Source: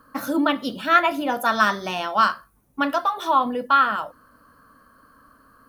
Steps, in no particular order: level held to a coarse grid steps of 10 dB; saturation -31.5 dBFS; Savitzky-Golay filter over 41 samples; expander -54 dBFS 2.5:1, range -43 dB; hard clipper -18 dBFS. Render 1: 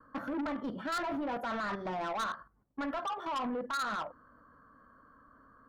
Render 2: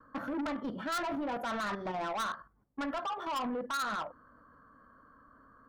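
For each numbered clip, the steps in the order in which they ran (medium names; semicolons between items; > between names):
hard clipper > expander > level held to a coarse grid > Savitzky-Golay filter > saturation; Savitzky-Golay filter > expander > hard clipper > level held to a coarse grid > saturation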